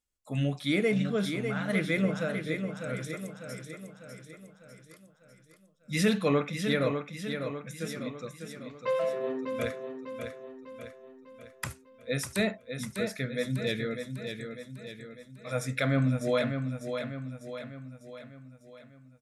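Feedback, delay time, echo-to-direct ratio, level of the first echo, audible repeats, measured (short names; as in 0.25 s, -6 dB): 52%, 0.599 s, -5.5 dB, -7.0 dB, 5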